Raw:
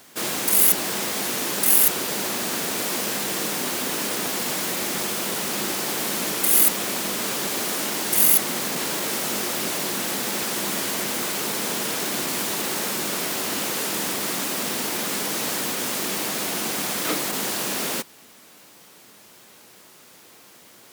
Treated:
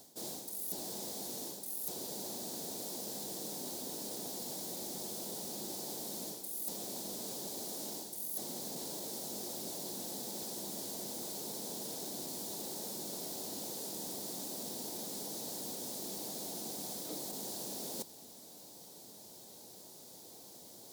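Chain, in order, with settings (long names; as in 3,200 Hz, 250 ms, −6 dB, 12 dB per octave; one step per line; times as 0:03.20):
flat-topped bell 1,800 Hz −16 dB
reversed playback
downward compressor 6 to 1, threshold −37 dBFS, peak gain reduction 22 dB
reversed playback
level −3 dB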